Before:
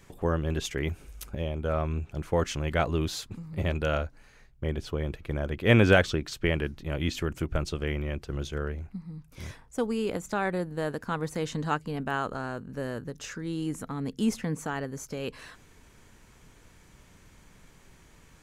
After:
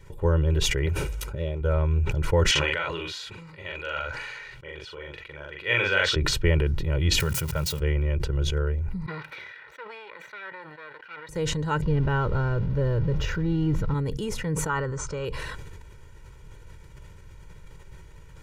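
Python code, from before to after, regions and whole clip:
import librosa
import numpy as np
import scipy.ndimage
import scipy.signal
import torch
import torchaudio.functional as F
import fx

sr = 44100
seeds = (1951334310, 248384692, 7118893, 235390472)

y = fx.chain(x, sr, fx.highpass(hz=140.0, slope=6),
    fx.doppler_dist(depth_ms=0.24), at=(0.86, 1.61))
y = fx.chain(y, sr, fx.bandpass_q(hz=2500.0, q=0.84),
    fx.doubler(ms=42.0, db=-2), at=(2.51, 6.16))
y = fx.chain(y, sr, fx.crossing_spikes(level_db=-31.5),
    fx.highpass(hz=120.0, slope=12),
    fx.peak_eq(hz=340.0, db=-12.5, octaves=0.54), at=(7.2, 7.8))
y = fx.chain(y, sr, fx.lower_of_two(delay_ms=0.5),
    fx.highpass(hz=1300.0, slope=12),
    fx.air_absorb(metres=370.0), at=(9.06, 11.29))
y = fx.chain(y, sr, fx.zero_step(step_db=-39.5),
    fx.moving_average(points=5),
    fx.low_shelf(hz=220.0, db=10.5), at=(11.82, 13.94))
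y = fx.chain(y, sr, fx.brickwall_lowpass(high_hz=9100.0),
    fx.peak_eq(hz=1200.0, db=13.0, octaves=0.59), at=(14.69, 15.25))
y = fx.bass_treble(y, sr, bass_db=7, treble_db=-5)
y = y + 0.84 * np.pad(y, (int(2.1 * sr / 1000.0), 0))[:len(y)]
y = fx.sustainer(y, sr, db_per_s=25.0)
y = y * librosa.db_to_amplitude(-2.0)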